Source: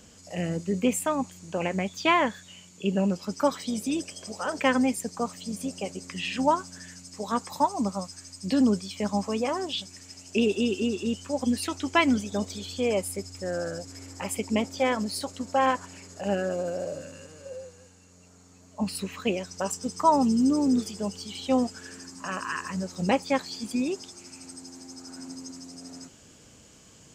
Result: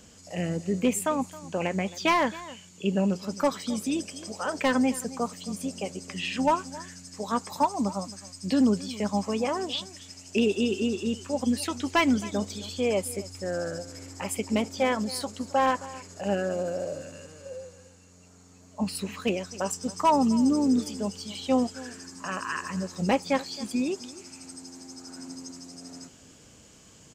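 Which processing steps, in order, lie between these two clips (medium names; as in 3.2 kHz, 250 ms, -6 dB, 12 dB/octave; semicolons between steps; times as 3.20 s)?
overload inside the chain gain 15 dB; echo from a far wall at 46 m, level -18 dB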